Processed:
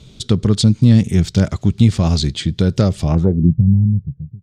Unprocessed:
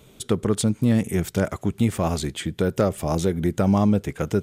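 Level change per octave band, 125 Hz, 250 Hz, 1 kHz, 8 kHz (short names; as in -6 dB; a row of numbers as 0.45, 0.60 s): +11.5, +6.0, -2.5, +2.0 dB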